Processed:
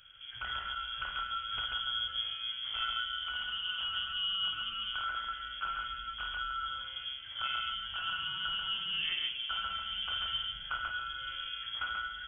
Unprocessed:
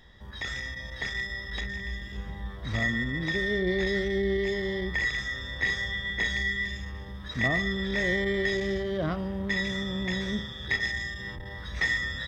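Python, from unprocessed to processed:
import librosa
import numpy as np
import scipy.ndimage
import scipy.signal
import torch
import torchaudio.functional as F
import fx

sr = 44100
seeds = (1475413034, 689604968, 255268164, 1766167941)

y = fx.rider(x, sr, range_db=5, speed_s=0.5)
y = fx.echo_multitap(y, sr, ms=(53, 138), db=(-8.0, -3.0))
y = fx.freq_invert(y, sr, carrier_hz=3300)
y = y * librosa.db_to_amplitude(-9.0)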